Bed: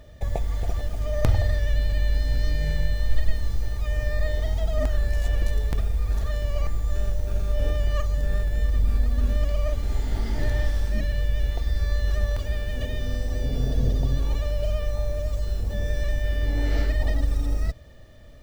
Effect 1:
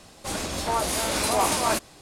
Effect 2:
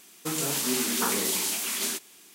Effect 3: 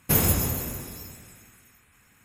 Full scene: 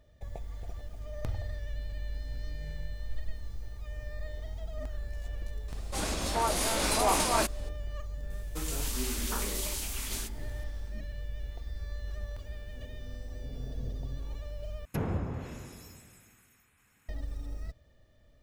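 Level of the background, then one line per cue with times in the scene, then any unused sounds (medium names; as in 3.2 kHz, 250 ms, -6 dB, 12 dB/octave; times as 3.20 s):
bed -14.5 dB
5.68 s: add 1 -3.5 dB
8.30 s: add 2 -8.5 dB
14.85 s: replace with 3 -7.5 dB + low-pass that closes with the level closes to 1.3 kHz, closed at -20.5 dBFS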